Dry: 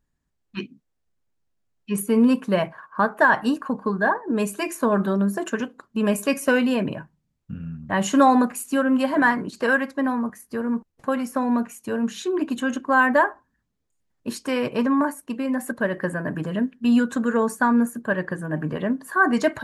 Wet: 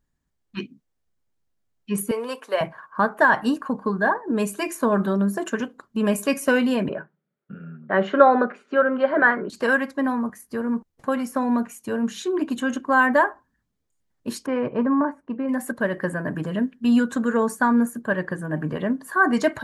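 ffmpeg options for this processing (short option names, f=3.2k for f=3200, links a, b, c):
-filter_complex "[0:a]asettb=1/sr,asplit=3[a][b][c];[a]atrim=end=2.114[d];[b]atrim=start=2.11:end=2.61,asetpts=PTS-STARTPTS,afade=t=in:d=0.004:c=qsin,afade=t=out:st=0.496:d=0.004:c=qsin,highpass=f=460:w=0.5412,highpass=f=460:w=1.3066[e];[c]atrim=start=2.606[f];[d][e]acrossfade=d=0.004:c1=hsin:c2=qsin[g];[g][f]acrossfade=d=0.004:c1=qsin:c2=hsin,asettb=1/sr,asplit=3[h][i][j];[h]atrim=end=6.894[k];[i]atrim=start=6.89:end=9.5,asetpts=PTS-STARTPTS,afade=t=in:d=0.004:c=qsin,afade=t=out:st=2.606:d=0.004:c=qsin,highpass=f=180:w=0.5412,highpass=f=180:w=1.3066,equalizer=f=270:t=q:w=4:g=-9,equalizer=f=400:t=q:w=4:g=10,equalizer=f=580:t=q:w=4:g=6,equalizer=f=970:t=q:w=4:g=-5,equalizer=f=1.4k:t=q:w=4:g=9,equalizer=f=2.8k:t=q:w=4:g=-5,lowpass=f=3.2k:w=0.5412,lowpass=f=3.2k:w=1.3066[l];[j]atrim=start=9.496[m];[k][l]acrossfade=d=0.004:c1=hsin:c2=qsin[n];[n][m]acrossfade=d=0.004:c1=qsin:c2=hsin,asettb=1/sr,asplit=3[o][p][q];[o]atrim=end=14.464[r];[p]atrim=start=14.46:end=15.49,asetpts=PTS-STARTPTS,afade=t=in:d=0.004:c=qsin,afade=t=out:st=1.026:d=0.004:c=qsin,lowpass=1.5k[s];[q]atrim=start=15.486[t];[r][s]acrossfade=d=0.004:c1=hsin:c2=qsin[u];[u][t]acrossfade=d=0.004:c1=qsin:c2=hsin,bandreject=f=2.6k:w=24"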